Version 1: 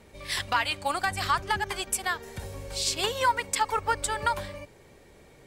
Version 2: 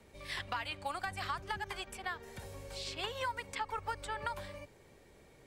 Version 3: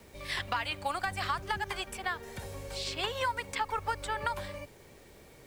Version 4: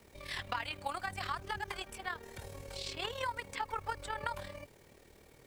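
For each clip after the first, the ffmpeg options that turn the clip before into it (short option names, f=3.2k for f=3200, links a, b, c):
-filter_complex "[0:a]acrossover=split=160|500|3700[a][b][c][d];[a]acompressor=threshold=-41dB:ratio=4[e];[b]acompressor=threshold=-46dB:ratio=4[f];[c]acompressor=threshold=-29dB:ratio=4[g];[d]acompressor=threshold=-48dB:ratio=4[h];[e][f][g][h]amix=inputs=4:normalize=0,volume=-6.5dB"
-af "acrusher=bits=10:mix=0:aa=0.000001,volume=5.5dB"
-af "tremolo=f=38:d=0.621,volume=-2.5dB"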